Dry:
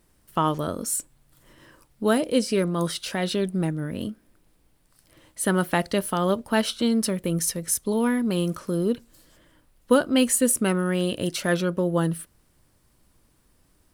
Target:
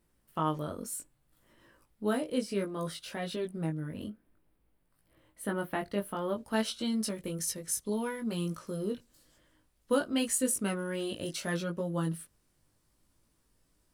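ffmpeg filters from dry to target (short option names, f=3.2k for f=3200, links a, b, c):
-af "asetnsamples=n=441:p=0,asendcmd='4.08 equalizer g -12;6.36 equalizer g 3',equalizer=f=6.2k:t=o:w=1.5:g=-3.5,flanger=delay=18:depth=2.1:speed=0.6,volume=-6.5dB"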